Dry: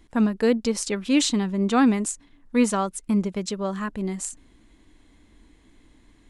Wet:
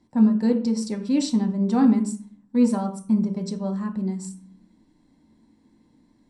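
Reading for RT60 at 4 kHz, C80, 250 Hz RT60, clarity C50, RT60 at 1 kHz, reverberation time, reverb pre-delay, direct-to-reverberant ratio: 0.40 s, 14.5 dB, 0.70 s, 10.5 dB, 0.45 s, 0.40 s, 3 ms, 2.0 dB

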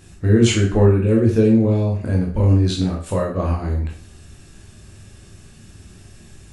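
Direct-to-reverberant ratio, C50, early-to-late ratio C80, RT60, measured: -2.0 dB, 6.0 dB, 11.0 dB, 0.45 s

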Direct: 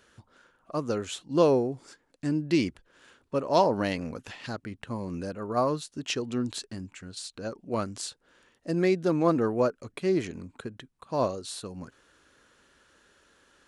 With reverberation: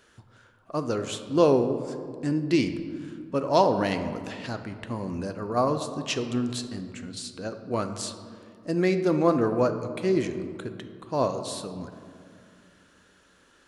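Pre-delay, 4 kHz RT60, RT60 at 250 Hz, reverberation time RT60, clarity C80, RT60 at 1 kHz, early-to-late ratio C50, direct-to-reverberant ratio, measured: 3 ms, 1.1 s, 3.2 s, 2.4 s, 11.0 dB, 2.2 s, 9.5 dB, 8.0 dB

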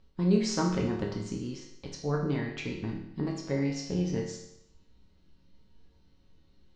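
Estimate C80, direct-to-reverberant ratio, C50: 7.5 dB, -2.0 dB, 4.5 dB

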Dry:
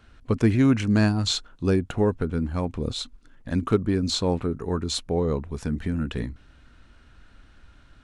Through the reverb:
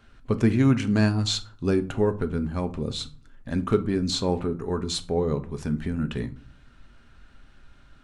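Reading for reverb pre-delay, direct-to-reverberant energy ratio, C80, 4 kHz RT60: 5 ms, 8.0 dB, 22.0 dB, 0.25 s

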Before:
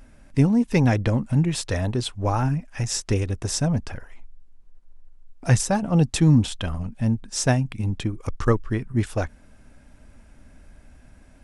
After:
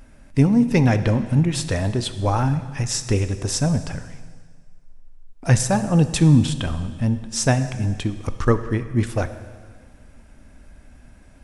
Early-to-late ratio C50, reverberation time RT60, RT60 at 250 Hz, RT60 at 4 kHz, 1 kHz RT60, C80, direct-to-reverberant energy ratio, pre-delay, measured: 12.0 dB, 1.7 s, 1.6 s, 1.7 s, 1.7 s, 13.0 dB, 10.5 dB, 10 ms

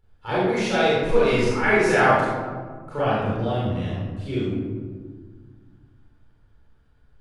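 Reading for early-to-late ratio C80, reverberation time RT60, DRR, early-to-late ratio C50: 0.0 dB, 1.7 s, -10.0 dB, -2.5 dB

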